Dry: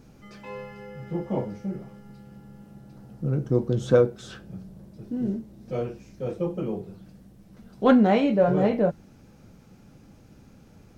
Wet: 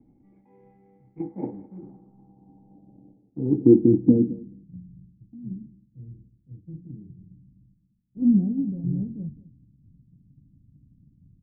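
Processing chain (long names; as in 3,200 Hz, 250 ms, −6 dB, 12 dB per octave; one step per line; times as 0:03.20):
loose part that buzzes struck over −28 dBFS, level −25 dBFS
high-shelf EQ 2,500 Hz −6 dB
reversed playback
upward compression, threshold −28 dBFS
reversed playback
log-companded quantiser 4 bits
formant resonators in series u
low-pass filter sweep 2,500 Hz → 150 Hz, 0:01.07–0:04.74
on a send: repeating echo 205 ms, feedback 16%, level −13.5 dB
on the sum: wrong playback speed 25 fps video run at 24 fps
multiband upward and downward expander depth 100%
level +2.5 dB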